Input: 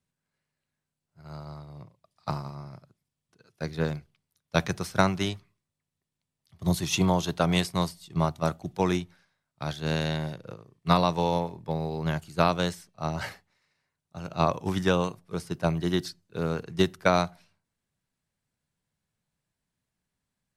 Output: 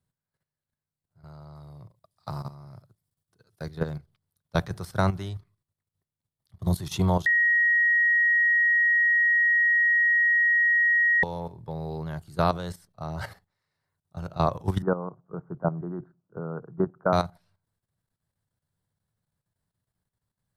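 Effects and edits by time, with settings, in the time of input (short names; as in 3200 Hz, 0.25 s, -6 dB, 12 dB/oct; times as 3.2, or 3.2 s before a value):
1.55–3.69 high shelf 4800 Hz +7 dB
7.26–11.23 bleep 1890 Hz -11.5 dBFS
14.82–17.13 Chebyshev band-pass 130–1400 Hz, order 4
whole clip: fifteen-band EQ 100 Hz +8 dB, 250 Hz -4 dB, 2500 Hz -10 dB, 6300 Hz -7 dB; level quantiser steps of 12 dB; gain +3 dB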